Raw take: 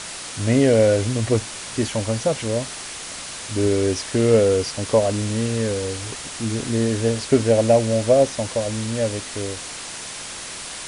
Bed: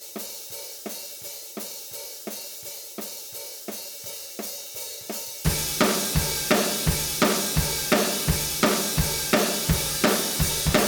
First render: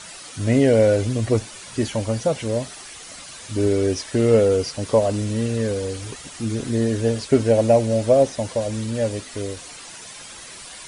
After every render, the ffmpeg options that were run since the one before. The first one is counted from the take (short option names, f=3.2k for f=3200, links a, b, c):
-af "afftdn=nr=10:nf=-34"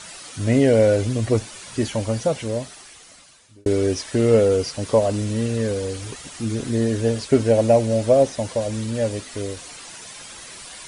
-filter_complex "[0:a]asplit=2[a][b];[a]atrim=end=3.66,asetpts=PTS-STARTPTS,afade=t=out:st=2.25:d=1.41[c];[b]atrim=start=3.66,asetpts=PTS-STARTPTS,afade=t=in:d=0.004:c=hsin[d];[c][d]concat=n=2:v=0:a=1"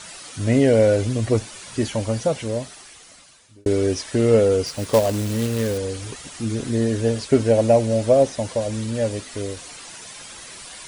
-filter_complex "[0:a]asettb=1/sr,asplit=3[a][b][c];[a]atrim=end=4.664[d];[b]atrim=start=4.66:end=5.78,asetpts=PTS-STARTPTS,afade=t=in:d=0.004:c=qsin,afade=t=out:st=1.116:d=0.004:c=qsin,acrusher=bits=3:mode=log:mix=0:aa=0.000001[e];[c]atrim=start=5.776[f];[d][e]acrossfade=d=0.004:c1=hsin:c2=qsin[g];[g][f]acrossfade=d=0.004:c1=qsin:c2=hsin"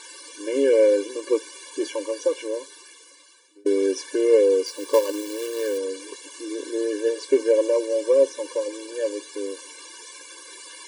-af "afftfilt=real='re*eq(mod(floor(b*sr/1024/300),2),1)':imag='im*eq(mod(floor(b*sr/1024/300),2),1)':win_size=1024:overlap=0.75"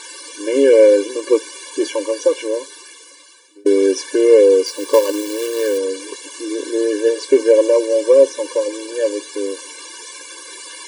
-af "volume=7.5dB,alimiter=limit=-1dB:level=0:latency=1"